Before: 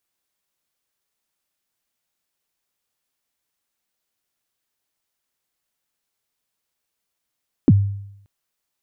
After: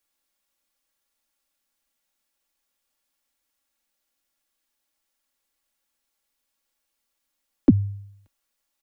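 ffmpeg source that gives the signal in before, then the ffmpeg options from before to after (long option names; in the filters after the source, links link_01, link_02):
-f lavfi -i "aevalsrc='0.501*pow(10,-3*t/0.77)*sin(2*PI*(340*0.039/log(100/340)*(exp(log(100/340)*min(t,0.039)/0.039)-1)+100*max(t-0.039,0)))':duration=0.58:sample_rate=44100"
-filter_complex "[0:a]equalizer=frequency=81:width=0.76:gain=-9.5,aecho=1:1:3.6:0.54,acrossover=split=120|200|470[link_01][link_02][link_03][link_04];[link_01]acontrast=63[link_05];[link_05][link_02][link_03][link_04]amix=inputs=4:normalize=0"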